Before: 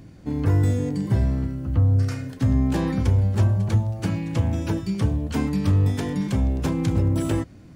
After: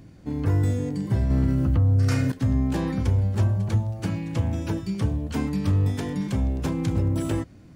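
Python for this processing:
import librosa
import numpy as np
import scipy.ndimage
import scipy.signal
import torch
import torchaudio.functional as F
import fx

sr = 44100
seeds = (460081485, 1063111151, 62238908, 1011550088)

y = fx.env_flatten(x, sr, amount_pct=70, at=(1.3, 2.32))
y = F.gain(torch.from_numpy(y), -2.5).numpy()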